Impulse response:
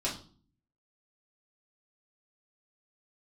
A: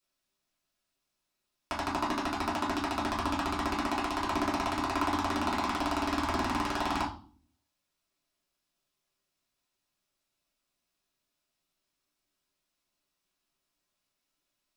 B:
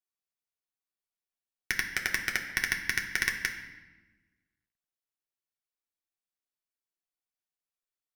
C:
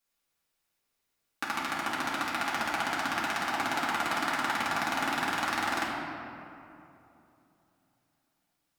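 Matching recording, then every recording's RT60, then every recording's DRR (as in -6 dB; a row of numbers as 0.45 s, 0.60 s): A; 0.45 s, 1.2 s, 2.9 s; -6.5 dB, 0.5 dB, -7.5 dB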